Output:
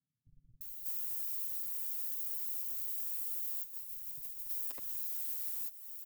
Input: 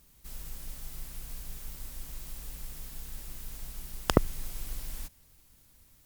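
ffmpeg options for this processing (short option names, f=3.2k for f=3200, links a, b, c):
-filter_complex "[0:a]lowshelf=f=220:g=-7,asplit=3[a][b][c];[a]afade=t=out:st=3.01:d=0.02[d];[b]agate=range=-33dB:threshold=-35dB:ratio=3:detection=peak,afade=t=in:st=3.01:d=0.02,afade=t=out:st=3.88:d=0.02[e];[c]afade=t=in:st=3.88:d=0.02[f];[d][e][f]amix=inputs=3:normalize=0,acrossover=split=120|1000[g][h][i];[g]acrusher=bits=5:dc=4:mix=0:aa=0.000001[j];[j][h][i]amix=inputs=3:normalize=0,asoftclip=type=tanh:threshold=-23dB,alimiter=level_in=9dB:limit=-24dB:level=0:latency=1:release=351,volume=-9dB,aemphasis=mode=production:type=bsi,aecho=1:1:7.4:0.68,acrossover=split=150[k][l];[l]adelay=610[m];[k][m]amix=inputs=2:normalize=0,acompressor=threshold=-45dB:ratio=2"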